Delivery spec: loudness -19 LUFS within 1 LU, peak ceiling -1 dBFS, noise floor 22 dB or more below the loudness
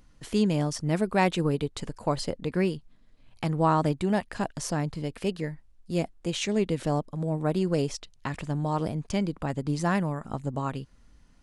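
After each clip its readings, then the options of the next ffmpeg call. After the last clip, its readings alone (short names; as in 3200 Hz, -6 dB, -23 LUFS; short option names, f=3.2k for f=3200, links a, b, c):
loudness -29.0 LUFS; peak -9.5 dBFS; loudness target -19.0 LUFS
-> -af "volume=10dB,alimiter=limit=-1dB:level=0:latency=1"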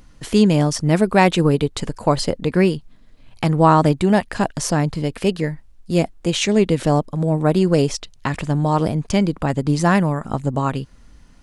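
loudness -19.0 LUFS; peak -1.0 dBFS; noise floor -48 dBFS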